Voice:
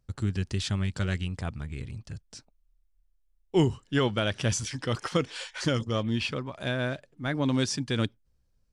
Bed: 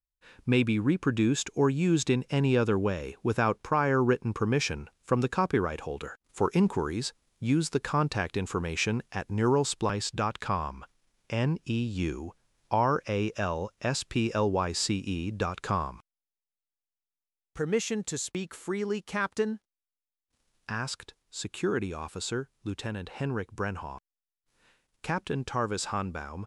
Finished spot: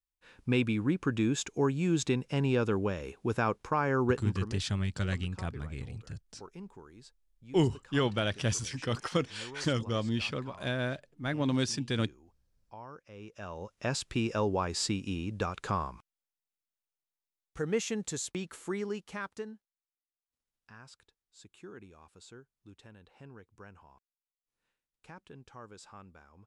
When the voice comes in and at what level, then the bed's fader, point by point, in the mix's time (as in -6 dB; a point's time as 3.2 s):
4.00 s, -3.0 dB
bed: 4.28 s -3.5 dB
4.65 s -22 dB
13.07 s -22 dB
13.84 s -3 dB
18.75 s -3 dB
19.98 s -19.5 dB